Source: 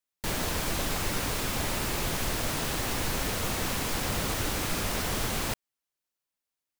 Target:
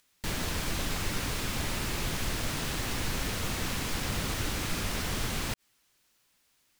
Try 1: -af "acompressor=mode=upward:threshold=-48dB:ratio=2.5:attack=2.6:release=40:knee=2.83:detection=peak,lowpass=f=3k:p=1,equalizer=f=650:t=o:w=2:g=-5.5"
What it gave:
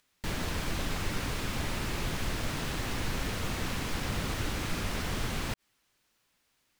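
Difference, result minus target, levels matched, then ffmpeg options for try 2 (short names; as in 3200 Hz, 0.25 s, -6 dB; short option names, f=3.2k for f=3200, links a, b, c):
8000 Hz band -3.5 dB
-af "acompressor=mode=upward:threshold=-48dB:ratio=2.5:attack=2.6:release=40:knee=2.83:detection=peak,lowpass=f=6.8k:p=1,equalizer=f=650:t=o:w=2:g=-5.5"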